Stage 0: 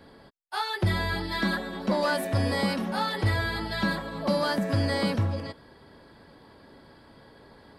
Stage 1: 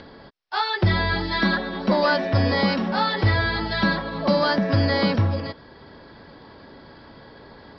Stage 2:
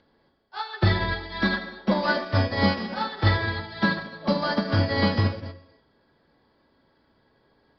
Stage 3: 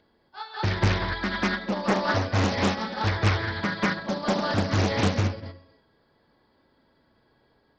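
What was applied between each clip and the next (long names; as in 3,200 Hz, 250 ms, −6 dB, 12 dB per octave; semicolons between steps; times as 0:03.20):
Chebyshev low-pass filter 5,500 Hz, order 6; upward compression, threshold −47 dBFS; level +6.5 dB
reverb whose tail is shaped and stops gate 320 ms flat, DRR 2.5 dB; expander for the loud parts 2.5 to 1, over −29 dBFS
backwards echo 193 ms −3.5 dB; highs frequency-modulated by the lows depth 0.89 ms; level −2 dB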